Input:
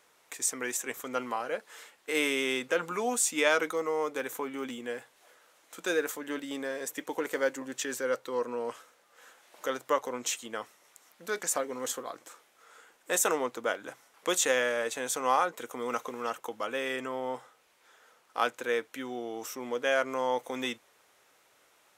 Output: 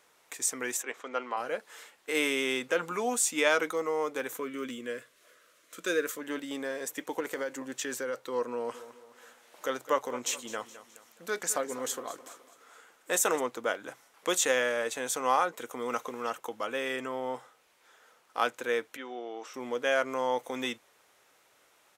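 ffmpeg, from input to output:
ffmpeg -i in.wav -filter_complex "[0:a]asplit=3[link_01][link_02][link_03];[link_01]afade=type=out:start_time=0.82:duration=0.02[link_04];[link_02]highpass=350,lowpass=3900,afade=type=in:start_time=0.82:duration=0.02,afade=type=out:start_time=1.36:duration=0.02[link_05];[link_03]afade=type=in:start_time=1.36:duration=0.02[link_06];[link_04][link_05][link_06]amix=inputs=3:normalize=0,asettb=1/sr,asplit=3[link_07][link_08][link_09];[link_07]atrim=end=4.374[link_10];[link_08]atrim=start=4.37:end=6.19,asetpts=PTS-STARTPTS,afade=type=in:duration=0.004:curve=qsin,afade=type=out:start_time=1.816:duration=0.004:curve=qsin,asuperstop=centerf=820:order=4:qfactor=2.2[link_11];[link_09]atrim=start=6.186[link_12];[link_10][link_11]acrossfade=duration=0.004:curve1=hsin:curve2=qsin[link_13];[link_13][link_12]acrossfade=duration=0.004:curve1=qsin:curve2=hsin,asettb=1/sr,asplit=3[link_14][link_15][link_16];[link_14]atrim=end=7.204[link_17];[link_15]atrim=start=7.2:end=8.2,asetpts=PTS-STARTPTS,afade=type=in:duration=0.004:curve=qsin,afade=type=out:start_time=0.996:duration=0.004:curve=qsin,acompressor=threshold=-29dB:ratio=6:attack=3.2:release=140:knee=1:detection=peak[link_18];[link_16]atrim=start=8.196[link_19];[link_17][link_18]acrossfade=duration=0.004:curve1=hsin:curve2=qsin[link_20];[link_20][link_19]acrossfade=duration=0.004:curve1=qsin:curve2=hsin,asplit=3[link_21][link_22][link_23];[link_21]afade=type=out:start_time=8.73:duration=0.02[link_24];[link_22]aecho=1:1:210|420|630|840:0.178|0.0782|0.0344|0.0151,afade=type=in:start_time=8.73:duration=0.02,afade=type=out:start_time=13.39:duration=0.02[link_25];[link_23]afade=type=in:start_time=13.39:duration=0.02[link_26];[link_24][link_25][link_26]amix=inputs=3:normalize=0,asplit=3[link_27][link_28][link_29];[link_27]afade=type=out:start_time=18.96:duration=0.02[link_30];[link_28]highpass=380,lowpass=3900,afade=type=in:start_time=18.96:duration=0.02,afade=type=out:start_time=19.53:duration=0.02[link_31];[link_29]afade=type=in:start_time=19.53:duration=0.02[link_32];[link_30][link_31][link_32]amix=inputs=3:normalize=0" out.wav

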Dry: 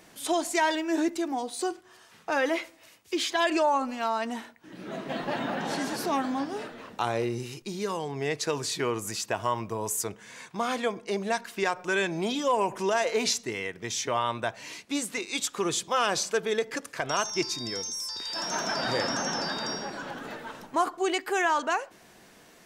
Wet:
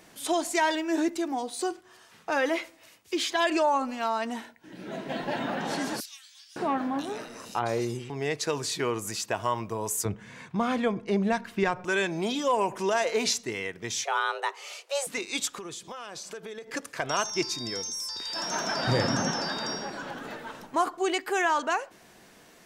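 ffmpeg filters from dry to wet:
ffmpeg -i in.wav -filter_complex "[0:a]asettb=1/sr,asplit=3[link_01][link_02][link_03];[link_01]atrim=end=4.414[link_04];[link_02]atrim=start=4.41:end=5.42,asetpts=PTS-STARTPTS,afade=type=in:duration=0.004:curve=qsin,afade=type=out:start_time=1.006:duration=0.004:curve=qsin,asuperstop=centerf=1200:order=4:qfactor=6.5[link_05];[link_03]atrim=start=5.416[link_06];[link_04][link_05]acrossfade=duration=0.004:curve1=hsin:curve2=qsin[link_07];[link_07][link_06]acrossfade=duration=0.004:curve1=qsin:curve2=hsin,asettb=1/sr,asplit=3[link_08][link_09][link_10];[link_08]atrim=end=6.004[link_11];[link_09]atrim=start=6:end=8.1,asetpts=PTS-STARTPTS,afade=type=in:duration=0.004:curve=qsin,afade=type=out:start_time=2.096:duration=0.004:curve=qsin,acrossover=split=3000[link_12][link_13];[link_12]adelay=560[link_14];[link_14][link_13]amix=inputs=2:normalize=0,atrim=end_sample=92610[link_15];[link_10]atrim=start=8.096[link_16];[link_11][link_15]acrossfade=duration=0.004:curve1=hsin:curve2=qsin[link_17];[link_17][link_16]acrossfade=duration=0.004:curve1=qsin:curve2=hsin,asettb=1/sr,asplit=3[link_18][link_19][link_20];[link_18]atrim=end=10.054[link_21];[link_19]atrim=start=10.05:end=11.85,asetpts=PTS-STARTPTS,afade=type=in:duration=0.004:curve=qsin,afade=type=out:start_time=1.796:duration=0.004:curve=qsin,bass=frequency=250:gain=13,treble=frequency=4000:gain=-9[link_22];[link_20]atrim=start=11.846[link_23];[link_21][link_22]acrossfade=duration=0.004:curve1=hsin:curve2=qsin[link_24];[link_24][link_23]acrossfade=duration=0.004:curve1=qsin:curve2=hsin,asettb=1/sr,asplit=3[link_25][link_26][link_27];[link_25]atrim=end=14.044[link_28];[link_26]atrim=start=14.04:end=15.07,asetpts=PTS-STARTPTS,afade=type=in:duration=0.004:curve=qsin,afade=type=out:start_time=1.026:duration=0.004:curve=qsin,afreqshift=280[link_29];[link_27]atrim=start=15.066[link_30];[link_28][link_29]acrossfade=duration=0.004:curve1=hsin:curve2=qsin[link_31];[link_31][link_30]acrossfade=duration=0.004:curve1=qsin:curve2=hsin,asettb=1/sr,asplit=3[link_32][link_33][link_34];[link_32]atrim=end=15.574[link_35];[link_33]atrim=start=15.57:end=16.74,asetpts=PTS-STARTPTS,afade=type=in:duration=0.004:curve=qsin,afade=type=out:start_time=1.166:duration=0.004:curve=qsin,acompressor=threshold=-36dB:ratio=10:attack=3.2:release=140:knee=1:detection=peak[link_36];[link_34]atrim=start=16.736[link_37];[link_35][link_36]acrossfade=duration=0.004:curve1=hsin:curve2=qsin[link_38];[link_38][link_37]acrossfade=duration=0.004:curve1=qsin:curve2=hsin,asettb=1/sr,asplit=3[link_39][link_40][link_41];[link_39]atrim=end=18.874[link_42];[link_40]atrim=start=18.87:end=19.31,asetpts=PTS-STARTPTS,afade=type=in:duration=0.004:curve=qsin,afade=type=out:start_time=0.436:duration=0.004:curve=qsin,equalizer=frequency=93:width_type=o:width=2.4:gain=14.5[link_43];[link_41]atrim=start=19.306[link_44];[link_42][link_43]acrossfade=duration=0.004:curve1=hsin:curve2=qsin[link_45];[link_45][link_44]acrossfade=duration=0.004:curve1=qsin:curve2=hsin" out.wav

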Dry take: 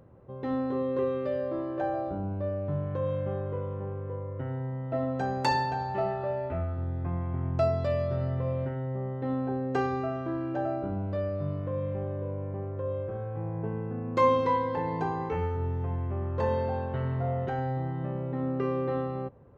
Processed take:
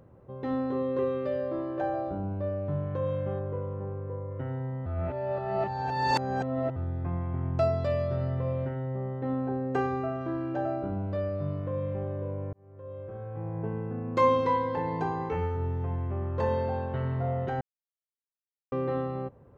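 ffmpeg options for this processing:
ffmpeg -i in.wav -filter_complex "[0:a]asettb=1/sr,asplit=3[link_01][link_02][link_03];[link_01]atrim=end=3.394[link_04];[link_02]atrim=start=3.39:end=4.31,asetpts=PTS-STARTPTS,afade=type=in:duration=0.004:curve=qsin,afade=type=out:start_time=0.916:duration=0.004:curve=qsin,lowpass=frequency=1700:poles=1[link_05];[link_03]atrim=start=4.306[link_06];[link_04][link_05]acrossfade=duration=0.004:curve1=hsin:curve2=qsin[link_07];[link_07][link_06]acrossfade=duration=0.004:curve1=qsin:curve2=hsin,asettb=1/sr,asplit=3[link_08][link_09][link_10];[link_08]atrim=end=9.194[link_11];[link_09]atrim=start=9.19:end=10.21,asetpts=PTS-STARTPTS,afade=type=in:duration=0.004:curve=qsin,afade=type=out:start_time=1.016:duration=0.004:curve=qsin,equalizer=frequency=4700:width=1.1:gain=-7[link_12];[link_10]atrim=start=10.206[link_13];[link_11][link_12]acrossfade=duration=0.004:curve1=hsin:curve2=qsin[link_14];[link_14][link_13]acrossfade=duration=0.004:curve1=qsin:curve2=hsin,asplit=6[link_15][link_16][link_17][link_18][link_19][link_20];[link_15]atrim=end=4.862[link_21];[link_16]atrim=start=4.858:end=6.762,asetpts=PTS-STARTPTS,areverse[link_22];[link_17]atrim=start=6.758:end=12.53,asetpts=PTS-STARTPTS,afade=type=out:start_time=5.768:duration=0.004:curve=hsin[link_23];[link_18]atrim=start=12.53:end=17.61,asetpts=PTS-STARTPTS,afade=type=in:duration=1.08,afade=type=out:start_time=5.076:duration=0.004:curve=hsin[link_24];[link_19]atrim=start=17.61:end=18.72,asetpts=PTS-STARTPTS,volume=0[link_25];[link_20]atrim=start=18.72,asetpts=PTS-STARTPTS,afade=type=in:duration=0.004:curve=hsin[link_26];[link_21][link_22]acrossfade=duration=0.004:curve1=hsin:curve2=hsin[link_27];[link_23][link_24][link_25][link_26]concat=n=4:v=0:a=1[link_28];[link_27][link_28]acrossfade=duration=0.004:curve1=hsin:curve2=hsin" out.wav

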